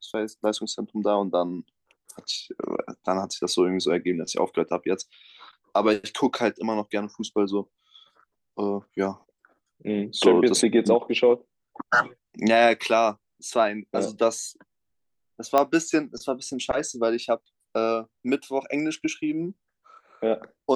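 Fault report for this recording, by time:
15.58 s: pop -8 dBFS

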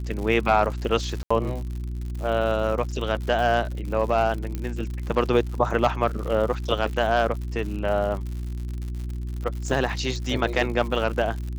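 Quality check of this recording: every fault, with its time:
crackle 120 per s -32 dBFS
hum 60 Hz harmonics 6 -30 dBFS
1.23–1.30 s: dropout 75 ms
4.55 s: pop -17 dBFS

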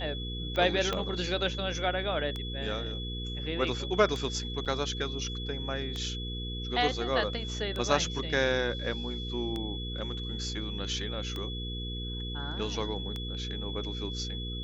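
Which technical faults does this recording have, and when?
hum 60 Hz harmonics 8 -37 dBFS
tick 33 1/3 rpm -22 dBFS
whine 3.4 kHz -39 dBFS
0.93 s: pop -17 dBFS
4.65–4.66 s: dropout 7 ms

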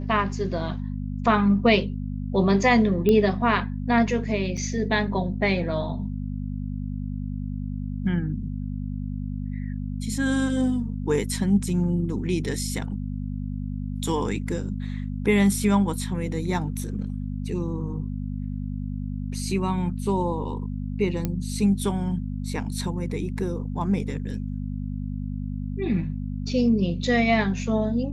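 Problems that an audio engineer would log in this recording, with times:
hum 50 Hz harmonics 5 -30 dBFS
3.09 s: pop -11 dBFS
4.57–4.58 s: dropout 5.4 ms
21.25 s: pop -13 dBFS

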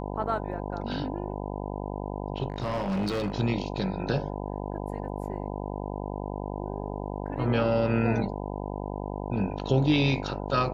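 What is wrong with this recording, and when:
buzz 50 Hz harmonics 20 -34 dBFS
2.50–3.32 s: clipped -25 dBFS

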